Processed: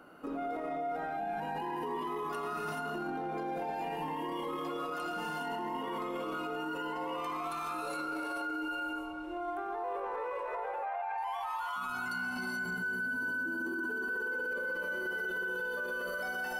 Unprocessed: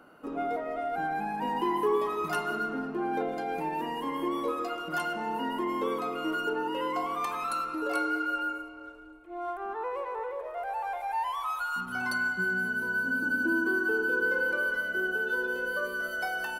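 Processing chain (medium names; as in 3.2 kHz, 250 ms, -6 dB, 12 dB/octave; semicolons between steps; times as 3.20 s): 10.42–11.18 s: three-band isolator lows -22 dB, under 590 Hz, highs -22 dB, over 2.7 kHz; gated-style reverb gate 460 ms rising, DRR -4.5 dB; peak limiter -29.5 dBFS, peak gain reduction 18.5 dB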